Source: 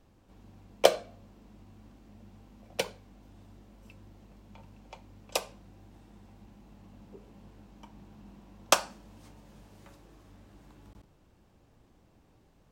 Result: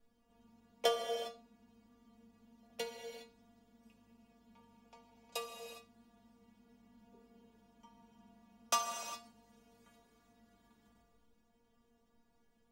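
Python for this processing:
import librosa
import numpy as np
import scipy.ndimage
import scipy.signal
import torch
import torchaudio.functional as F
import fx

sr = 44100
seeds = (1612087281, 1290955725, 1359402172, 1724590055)

y = fx.stiff_resonator(x, sr, f0_hz=230.0, decay_s=0.26, stiffness=0.002)
y = fx.rev_gated(y, sr, seeds[0], gate_ms=430, shape='flat', drr_db=4.5)
y = F.gain(torch.from_numpy(y), 2.5).numpy()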